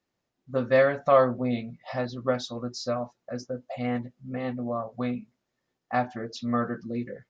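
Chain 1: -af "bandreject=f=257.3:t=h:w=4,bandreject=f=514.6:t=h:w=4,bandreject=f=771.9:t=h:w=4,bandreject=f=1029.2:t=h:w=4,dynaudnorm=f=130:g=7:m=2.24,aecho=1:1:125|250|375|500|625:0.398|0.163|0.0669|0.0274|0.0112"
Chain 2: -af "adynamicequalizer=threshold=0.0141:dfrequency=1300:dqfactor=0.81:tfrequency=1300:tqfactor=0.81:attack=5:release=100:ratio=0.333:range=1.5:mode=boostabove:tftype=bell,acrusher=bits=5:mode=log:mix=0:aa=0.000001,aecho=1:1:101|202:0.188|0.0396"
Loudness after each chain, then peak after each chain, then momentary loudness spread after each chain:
-22.0 LUFS, -27.0 LUFS; -3.0 dBFS, -5.5 dBFS; 13 LU, 15 LU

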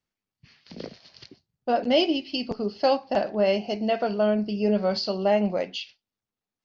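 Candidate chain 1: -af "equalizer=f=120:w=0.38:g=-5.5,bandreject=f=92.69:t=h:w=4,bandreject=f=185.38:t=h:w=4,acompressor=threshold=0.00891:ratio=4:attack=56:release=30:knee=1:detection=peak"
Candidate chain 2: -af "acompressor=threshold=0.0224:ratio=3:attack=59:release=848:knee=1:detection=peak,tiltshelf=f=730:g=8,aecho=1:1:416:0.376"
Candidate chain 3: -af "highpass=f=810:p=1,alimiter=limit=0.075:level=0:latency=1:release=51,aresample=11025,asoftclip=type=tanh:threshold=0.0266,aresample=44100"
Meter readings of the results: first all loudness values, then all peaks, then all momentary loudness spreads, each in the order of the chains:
-36.5 LUFS, -30.5 LUFS, -37.5 LUFS; -19.5 dBFS, -15.5 dBFS, -27.0 dBFS; 10 LU, 15 LU, 13 LU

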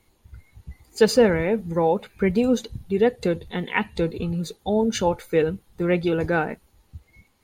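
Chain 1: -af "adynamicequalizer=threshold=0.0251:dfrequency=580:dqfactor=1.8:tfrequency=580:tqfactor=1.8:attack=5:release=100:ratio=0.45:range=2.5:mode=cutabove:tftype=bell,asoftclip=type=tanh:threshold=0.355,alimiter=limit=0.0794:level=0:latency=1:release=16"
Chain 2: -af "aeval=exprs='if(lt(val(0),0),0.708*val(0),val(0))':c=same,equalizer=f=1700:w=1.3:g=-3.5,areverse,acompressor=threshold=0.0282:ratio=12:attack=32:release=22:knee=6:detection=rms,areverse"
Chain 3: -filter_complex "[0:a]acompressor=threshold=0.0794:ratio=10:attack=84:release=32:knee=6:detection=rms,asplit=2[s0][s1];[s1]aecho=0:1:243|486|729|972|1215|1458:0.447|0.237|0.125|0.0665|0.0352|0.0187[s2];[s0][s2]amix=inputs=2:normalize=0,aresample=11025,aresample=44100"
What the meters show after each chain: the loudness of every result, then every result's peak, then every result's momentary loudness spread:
-31.0 LUFS, -32.5 LUFS, -24.5 LUFS; -22.0 dBFS, -16.0 dBFS, -7.0 dBFS; 17 LU, 17 LU, 7 LU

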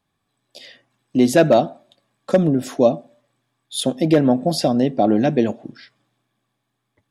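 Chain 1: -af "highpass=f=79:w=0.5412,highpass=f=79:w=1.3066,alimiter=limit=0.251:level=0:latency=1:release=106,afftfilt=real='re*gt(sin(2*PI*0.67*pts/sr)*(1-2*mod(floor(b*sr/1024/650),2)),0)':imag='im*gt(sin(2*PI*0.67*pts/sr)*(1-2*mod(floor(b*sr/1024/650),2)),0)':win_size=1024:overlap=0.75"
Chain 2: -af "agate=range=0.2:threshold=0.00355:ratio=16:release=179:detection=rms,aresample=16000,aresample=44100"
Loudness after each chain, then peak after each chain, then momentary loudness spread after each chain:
-27.0 LUFS, -18.0 LUFS; -11.5 dBFS, -3.5 dBFS; 21 LU, 10 LU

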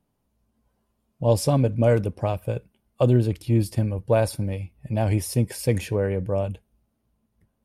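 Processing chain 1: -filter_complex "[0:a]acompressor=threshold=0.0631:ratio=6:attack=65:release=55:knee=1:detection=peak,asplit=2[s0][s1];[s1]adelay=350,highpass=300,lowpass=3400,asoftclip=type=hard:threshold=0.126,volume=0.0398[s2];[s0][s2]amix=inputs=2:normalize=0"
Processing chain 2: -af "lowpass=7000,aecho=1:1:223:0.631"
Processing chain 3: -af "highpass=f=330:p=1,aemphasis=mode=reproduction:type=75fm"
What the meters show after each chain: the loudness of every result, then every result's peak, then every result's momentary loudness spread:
-26.0 LUFS, -22.5 LUFS, -27.5 LUFS; -10.0 dBFS, -6.5 dBFS, -8.5 dBFS; 7 LU, 9 LU, 11 LU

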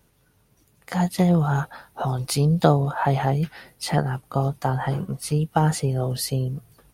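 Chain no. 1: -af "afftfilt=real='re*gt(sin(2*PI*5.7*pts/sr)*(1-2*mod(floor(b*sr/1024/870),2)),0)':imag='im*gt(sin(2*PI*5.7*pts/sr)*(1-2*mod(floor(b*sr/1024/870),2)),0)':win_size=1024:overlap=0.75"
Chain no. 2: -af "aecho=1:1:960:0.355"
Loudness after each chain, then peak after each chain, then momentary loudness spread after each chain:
-27.0 LUFS, -23.0 LUFS; -1.5 dBFS, -2.5 dBFS; 15 LU, 8 LU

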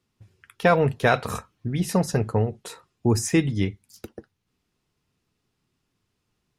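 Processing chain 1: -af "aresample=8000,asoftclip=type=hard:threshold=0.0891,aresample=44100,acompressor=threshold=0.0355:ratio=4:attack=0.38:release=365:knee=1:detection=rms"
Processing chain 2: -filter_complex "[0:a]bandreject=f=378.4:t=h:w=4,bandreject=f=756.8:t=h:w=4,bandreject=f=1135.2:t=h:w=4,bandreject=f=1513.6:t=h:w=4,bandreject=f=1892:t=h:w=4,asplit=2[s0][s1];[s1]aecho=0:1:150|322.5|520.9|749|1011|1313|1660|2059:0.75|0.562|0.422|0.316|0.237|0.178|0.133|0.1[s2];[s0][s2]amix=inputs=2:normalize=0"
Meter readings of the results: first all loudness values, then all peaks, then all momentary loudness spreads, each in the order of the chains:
-34.5 LUFS, -21.5 LUFS; -25.5 dBFS, -4.5 dBFS; 16 LU, 18 LU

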